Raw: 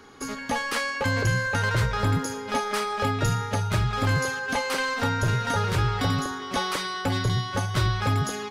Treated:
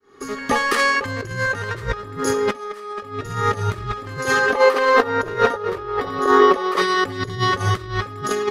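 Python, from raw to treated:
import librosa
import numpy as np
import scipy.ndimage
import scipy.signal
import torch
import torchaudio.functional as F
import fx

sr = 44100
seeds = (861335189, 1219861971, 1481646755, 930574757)

y = fx.fade_in_head(x, sr, length_s=1.17)
y = fx.small_body(y, sr, hz=(390.0, 1200.0, 1800.0), ring_ms=35, db=13)
y = fx.over_compress(y, sr, threshold_db=-28.0, ratio=-0.5)
y = fx.graphic_eq(y, sr, hz=(125, 500, 1000, 8000), db=(-9, 9, 5, -7), at=(4.5, 6.82))
y = F.gain(torch.from_numpy(y), 6.0).numpy()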